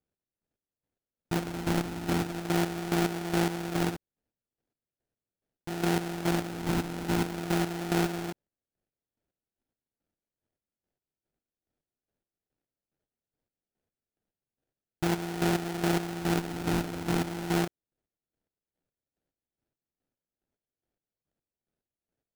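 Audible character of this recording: phasing stages 6, 0.4 Hz, lowest notch 640–1300 Hz; aliases and images of a low sample rate 1.1 kHz, jitter 20%; chopped level 2.4 Hz, depth 65%, duty 35%

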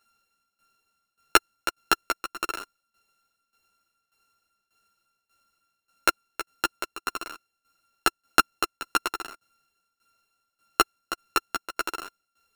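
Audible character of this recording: a buzz of ramps at a fixed pitch in blocks of 32 samples; tremolo saw down 1.7 Hz, depth 85%; a shimmering, thickened sound

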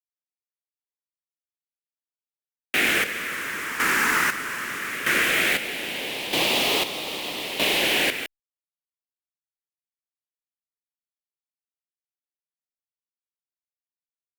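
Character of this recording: phasing stages 4, 0.18 Hz, lowest notch 670–1500 Hz; a quantiser's noise floor 6-bit, dither none; chopped level 0.79 Hz, depth 65%, duty 40%; Opus

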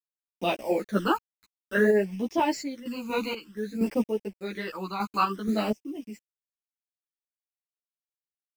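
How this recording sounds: a quantiser's noise floor 8-bit, dither none; phasing stages 12, 0.55 Hz, lowest notch 560–1400 Hz; random-step tremolo 4.2 Hz, depth 85%; a shimmering, thickened sound

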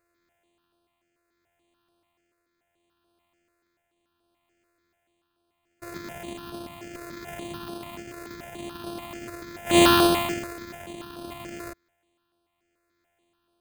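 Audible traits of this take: a buzz of ramps at a fixed pitch in blocks of 128 samples; tremolo triangle 0.7 Hz, depth 40%; aliases and images of a low sample rate 5.6 kHz, jitter 0%; notches that jump at a steady rate 6.9 Hz 860–7100 Hz

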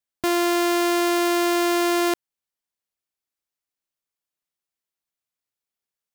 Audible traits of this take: noise floor -89 dBFS; spectral tilt -2.5 dB/octave

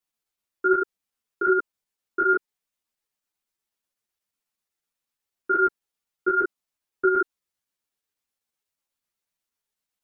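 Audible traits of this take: chopped level 8.1 Hz, depth 60%, duty 90%; a shimmering, thickened sound

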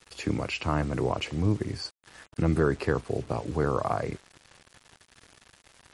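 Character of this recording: a quantiser's noise floor 8-bit, dither none; MP3

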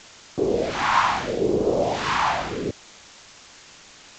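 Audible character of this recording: phasing stages 2, 0.75 Hz, lowest notch 440–1900 Hz; a quantiser's noise floor 8-bit, dither triangular; G.722

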